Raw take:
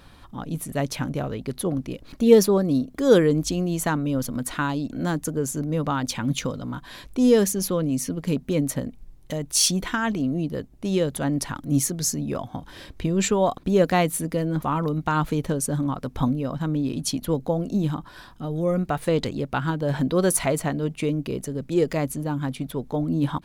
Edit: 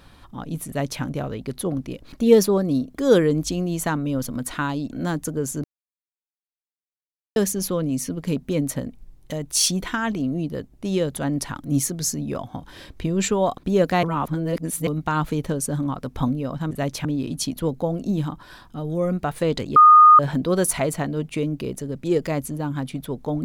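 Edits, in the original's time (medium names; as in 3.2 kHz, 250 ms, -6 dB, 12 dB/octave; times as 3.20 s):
0.68–1.02 s: copy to 16.71 s
5.64–7.36 s: mute
14.03–14.87 s: reverse
19.42–19.85 s: bleep 1.23 kHz -6.5 dBFS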